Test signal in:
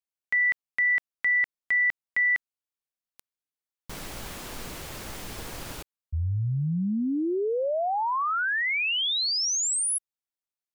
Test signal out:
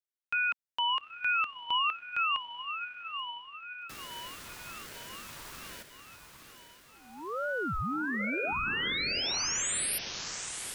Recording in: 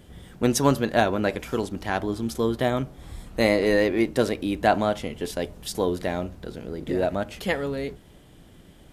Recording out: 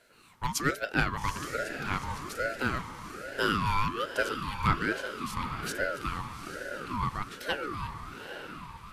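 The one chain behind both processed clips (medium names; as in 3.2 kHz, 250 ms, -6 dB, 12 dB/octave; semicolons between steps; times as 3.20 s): steep high-pass 360 Hz 48 dB/octave; echo that smears into a reverb 843 ms, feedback 52%, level -8 dB; ring modulator with a swept carrier 760 Hz, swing 35%, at 1.2 Hz; trim -3 dB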